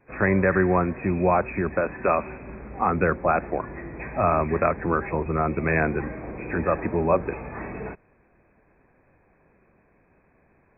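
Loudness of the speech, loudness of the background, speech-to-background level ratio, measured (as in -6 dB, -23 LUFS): -24.0 LUFS, -37.0 LUFS, 13.0 dB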